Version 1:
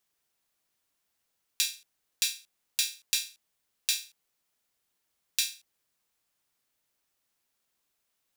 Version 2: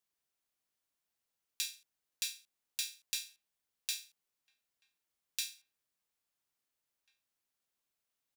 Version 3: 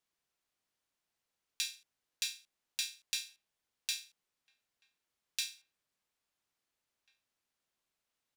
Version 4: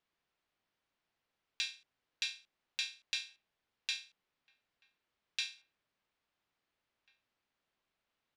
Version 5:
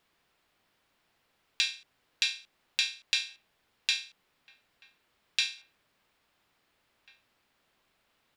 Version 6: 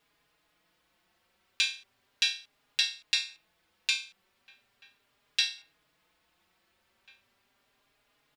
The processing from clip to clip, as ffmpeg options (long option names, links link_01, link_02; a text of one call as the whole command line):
ffmpeg -i in.wav -filter_complex "[0:a]asplit=2[link_01][link_02];[link_02]adelay=1691,volume=-20dB,highshelf=frequency=4000:gain=-38[link_03];[link_01][link_03]amix=inputs=2:normalize=0,volume=-9dB" out.wav
ffmpeg -i in.wav -af "highshelf=frequency=9500:gain=-11,volume=3.5dB" out.wav
ffmpeg -i in.wav -af "lowpass=3600,volume=4dB" out.wav
ffmpeg -i in.wav -filter_complex "[0:a]bandreject=frequency=6100:width=22,asplit=2[link_01][link_02];[link_02]acompressor=threshold=-46dB:ratio=6,volume=1.5dB[link_03];[link_01][link_03]amix=inputs=2:normalize=0,volume=6.5dB" out.wav
ffmpeg -i in.wav -filter_complex "[0:a]asplit=2[link_01][link_02];[link_02]adelay=4.4,afreqshift=0.37[link_03];[link_01][link_03]amix=inputs=2:normalize=1,volume=4dB" out.wav